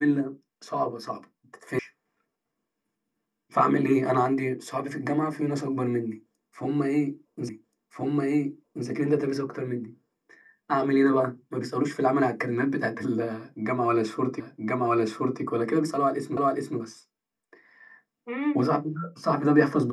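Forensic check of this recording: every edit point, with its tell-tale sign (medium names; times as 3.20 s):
1.79 s: sound stops dead
7.49 s: repeat of the last 1.38 s
14.40 s: repeat of the last 1.02 s
16.37 s: repeat of the last 0.41 s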